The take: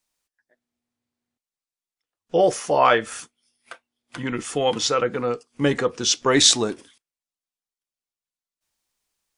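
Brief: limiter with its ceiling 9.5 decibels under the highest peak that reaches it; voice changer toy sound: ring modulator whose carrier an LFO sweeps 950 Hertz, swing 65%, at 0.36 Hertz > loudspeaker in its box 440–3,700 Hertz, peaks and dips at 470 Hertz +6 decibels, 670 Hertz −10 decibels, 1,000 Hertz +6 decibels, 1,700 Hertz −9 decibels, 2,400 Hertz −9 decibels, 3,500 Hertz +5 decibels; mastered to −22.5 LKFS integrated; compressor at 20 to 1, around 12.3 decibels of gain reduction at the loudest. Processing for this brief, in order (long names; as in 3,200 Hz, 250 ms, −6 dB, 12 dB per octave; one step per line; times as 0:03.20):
downward compressor 20 to 1, threshold −23 dBFS
brickwall limiter −22 dBFS
ring modulator whose carrier an LFO sweeps 950 Hz, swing 65%, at 0.36 Hz
loudspeaker in its box 440–3,700 Hz, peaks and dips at 470 Hz +6 dB, 670 Hz −10 dB, 1,000 Hz +6 dB, 1,700 Hz −9 dB, 2,400 Hz −9 dB, 3,500 Hz +5 dB
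level +15.5 dB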